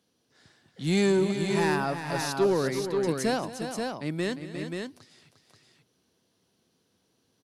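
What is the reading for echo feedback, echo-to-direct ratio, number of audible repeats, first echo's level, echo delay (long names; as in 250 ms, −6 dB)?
repeats not evenly spaced, −3.5 dB, 3, −16.0 dB, 222 ms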